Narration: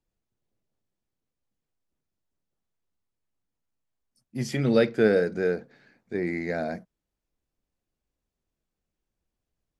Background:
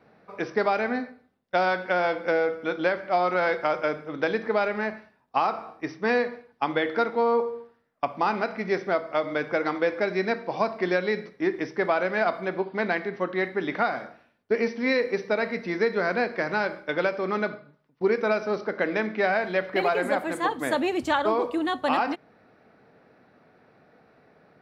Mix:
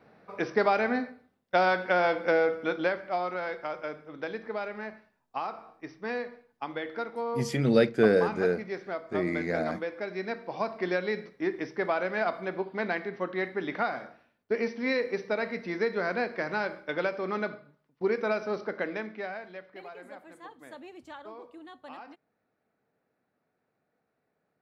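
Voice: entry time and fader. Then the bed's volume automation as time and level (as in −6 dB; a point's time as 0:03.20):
3.00 s, −1.0 dB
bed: 0:02.62 −0.5 dB
0:03.43 −10 dB
0:09.96 −10 dB
0:10.85 −4.5 dB
0:18.72 −4.5 dB
0:19.76 −21 dB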